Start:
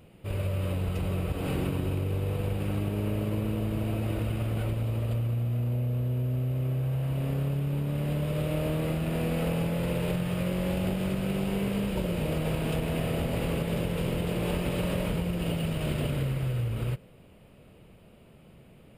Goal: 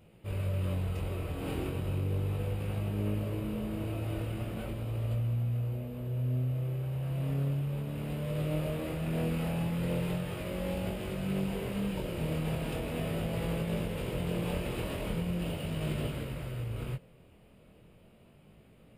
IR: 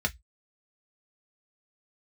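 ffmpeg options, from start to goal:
-af "flanger=delay=18:depth=7.3:speed=0.37,volume=0.841"

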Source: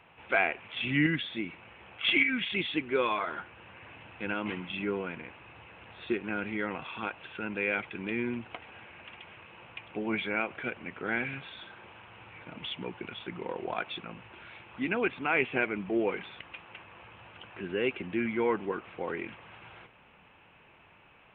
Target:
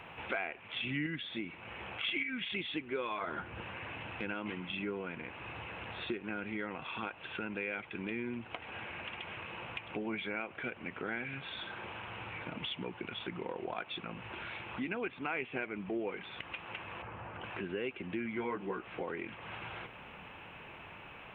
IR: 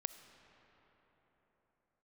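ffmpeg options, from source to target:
-filter_complex "[0:a]asettb=1/sr,asplit=3[s0][s1][s2];[s0]atrim=end=17.024[s3];[s1]atrim=start=17.02:end=17.44,asetpts=PTS-STARTPTS,afade=t=in:d=0.004:c=qsin,afade=t=out:st=0.416:d=0.004:c=qsin,lowpass=1600[s4];[s2]atrim=start=17.436[s5];[s3][s4]acrossfade=d=0.004:c1=hsin:c2=qsin[s6];[s6][s5]acrossfade=d=0.004:c1=qsin:c2=hsin,asettb=1/sr,asplit=3[s7][s8][s9];[s7]atrim=end=18.354[s10];[s8]atrim=start=18.35:end=19.03,asetpts=PTS-STARTPTS,afade=t=in:d=0.004:c=qsin,afade=t=out:st=0.676:d=0.004:c=qsin,asplit=2[s11][s12];[s12]adelay=16,volume=0.794[s13];[s11][s13]amix=inputs=2:normalize=0,atrim=end_sample=29988[s14];[s9]atrim=start=19.026[s15];[s10][s14]acrossfade=d=0.004:c1=hsin:c2=qsin[s16];[s16][s15]acrossfade=d=0.004:c1=qsin:c2=hsin,acompressor=threshold=0.00355:ratio=3,asettb=1/sr,asplit=3[s17][s18][s19];[s17]atrim=end=3.214[s20];[s18]atrim=start=3.21:end=3.62,asetpts=PTS-STARTPTS,afade=t=in:d=0.004:c=qsin,afade=t=out:st=0.406:d=0.004:c=qsin,lowshelf=f=410:g=8.5[s21];[s19]atrim=start=3.616[s22];[s20][s21]acrossfade=d=0.004:c1=hsin:c2=qsin[s23];[s23][s22]acrossfade=d=0.004:c1=qsin:c2=hsin,volume=2.66"

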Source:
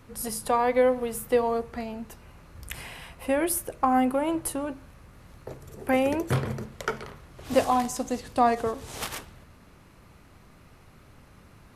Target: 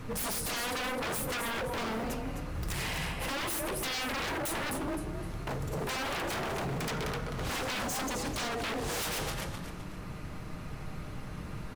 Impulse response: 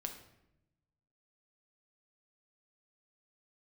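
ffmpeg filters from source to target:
-filter_complex "[0:a]acompressor=threshold=0.0316:ratio=6,lowshelf=f=230:g=4,asplit=2[s0][s1];[1:a]atrim=start_sample=2205,asetrate=52920,aresample=44100[s2];[s1][s2]afir=irnorm=-1:irlink=0,volume=1.06[s3];[s0][s3]amix=inputs=2:normalize=0,acrusher=bits=8:mode=log:mix=0:aa=0.000001,highshelf=f=9300:g=-6.5,aecho=1:1:6.5:0.33,asplit=4[s4][s5][s6][s7];[s5]adelay=258,afreqshift=33,volume=0.335[s8];[s6]adelay=516,afreqshift=66,volume=0.104[s9];[s7]adelay=774,afreqshift=99,volume=0.0324[s10];[s4][s8][s9][s10]amix=inputs=4:normalize=0,aeval=exprs='0.0224*(abs(mod(val(0)/0.0224+3,4)-2)-1)':c=same,volume=1.58"

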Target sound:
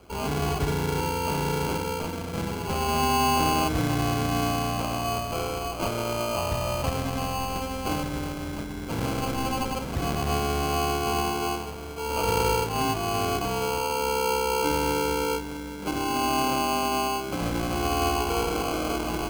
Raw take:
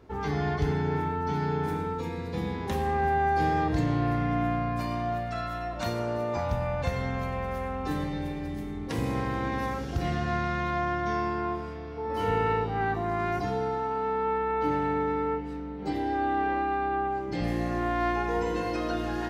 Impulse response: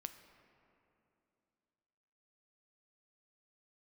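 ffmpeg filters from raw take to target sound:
-filter_complex "[0:a]acrossover=split=180|990|1900[s0][s1][s2][s3];[s3]alimiter=level_in=5.01:limit=0.0631:level=0:latency=1:release=405,volume=0.2[s4];[s0][s1][s2][s4]amix=inputs=4:normalize=0,crystalizer=i=7.5:c=0,acrusher=samples=24:mix=1:aa=0.000001"

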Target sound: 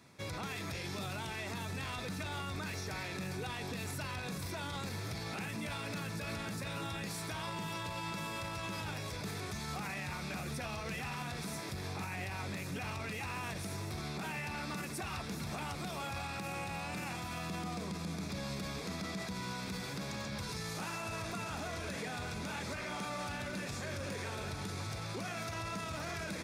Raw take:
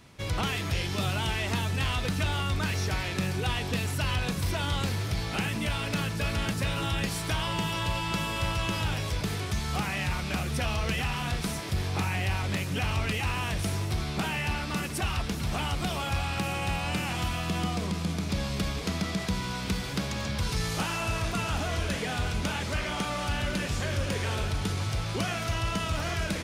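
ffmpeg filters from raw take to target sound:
-af "highpass=120,bandreject=f=3000:w=5.2,alimiter=level_in=1.33:limit=0.0631:level=0:latency=1:release=28,volume=0.75,volume=0.562"

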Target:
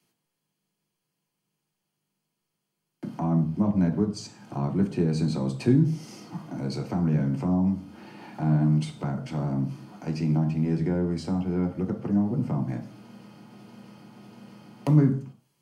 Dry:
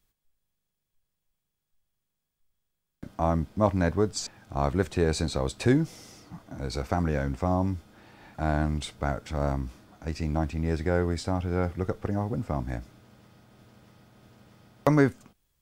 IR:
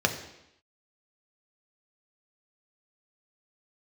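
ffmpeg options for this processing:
-filter_complex "[0:a]acrossover=split=240[s0][s1];[s1]acompressor=threshold=0.00631:ratio=3[s2];[s0][s2]amix=inputs=2:normalize=0[s3];[1:a]atrim=start_sample=2205,asetrate=79380,aresample=44100[s4];[s3][s4]afir=irnorm=-1:irlink=0,volume=0.841"

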